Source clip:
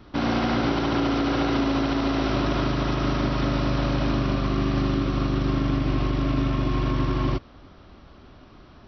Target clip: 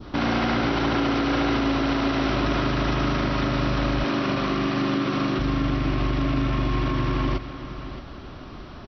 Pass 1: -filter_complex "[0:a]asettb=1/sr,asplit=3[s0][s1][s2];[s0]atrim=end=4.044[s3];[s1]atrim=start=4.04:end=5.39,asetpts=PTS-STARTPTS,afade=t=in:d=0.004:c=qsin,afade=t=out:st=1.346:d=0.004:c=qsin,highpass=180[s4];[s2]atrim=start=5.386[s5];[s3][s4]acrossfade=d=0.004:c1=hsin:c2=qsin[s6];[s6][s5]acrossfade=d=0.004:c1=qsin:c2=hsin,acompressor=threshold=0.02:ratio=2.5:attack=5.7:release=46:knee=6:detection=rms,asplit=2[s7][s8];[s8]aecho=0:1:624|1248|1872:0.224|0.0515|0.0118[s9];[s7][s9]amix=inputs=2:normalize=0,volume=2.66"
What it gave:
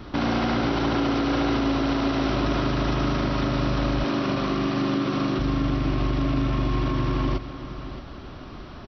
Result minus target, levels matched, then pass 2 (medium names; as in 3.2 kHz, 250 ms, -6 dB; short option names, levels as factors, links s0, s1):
2 kHz band -3.0 dB
-filter_complex "[0:a]asettb=1/sr,asplit=3[s0][s1][s2];[s0]atrim=end=4.044[s3];[s1]atrim=start=4.04:end=5.39,asetpts=PTS-STARTPTS,afade=t=in:d=0.004:c=qsin,afade=t=out:st=1.346:d=0.004:c=qsin,highpass=180[s4];[s2]atrim=start=5.386[s5];[s3][s4]acrossfade=d=0.004:c1=hsin:c2=qsin[s6];[s6][s5]acrossfade=d=0.004:c1=qsin:c2=hsin,acompressor=threshold=0.02:ratio=2.5:attack=5.7:release=46:knee=6:detection=rms,adynamicequalizer=threshold=0.00282:dfrequency=2000:dqfactor=0.99:tfrequency=2000:tqfactor=0.99:attack=5:release=100:ratio=0.333:range=2:mode=boostabove:tftype=bell,asplit=2[s7][s8];[s8]aecho=0:1:624|1248|1872:0.224|0.0515|0.0118[s9];[s7][s9]amix=inputs=2:normalize=0,volume=2.66"